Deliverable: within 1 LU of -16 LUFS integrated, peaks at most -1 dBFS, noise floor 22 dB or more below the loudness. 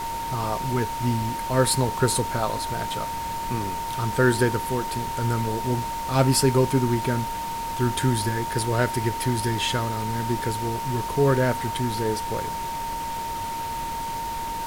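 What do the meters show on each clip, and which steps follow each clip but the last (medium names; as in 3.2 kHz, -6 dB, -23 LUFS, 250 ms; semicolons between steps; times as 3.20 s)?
steady tone 920 Hz; tone level -28 dBFS; noise floor -30 dBFS; noise floor target -47 dBFS; loudness -25.0 LUFS; peak level -7.5 dBFS; loudness target -16.0 LUFS
-> band-stop 920 Hz, Q 30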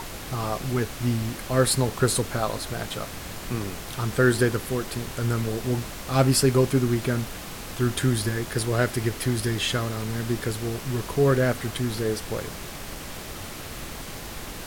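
steady tone not found; noise floor -37 dBFS; noise floor target -48 dBFS
-> noise print and reduce 11 dB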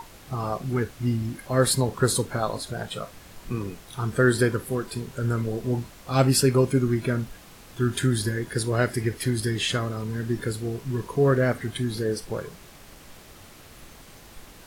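noise floor -48 dBFS; loudness -26.0 LUFS; peak level -7.5 dBFS; loudness target -16.0 LUFS
-> trim +10 dB; peak limiter -1 dBFS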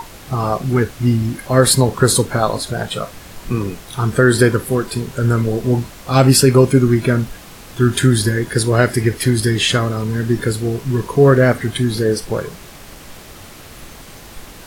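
loudness -16.0 LUFS; peak level -1.0 dBFS; noise floor -38 dBFS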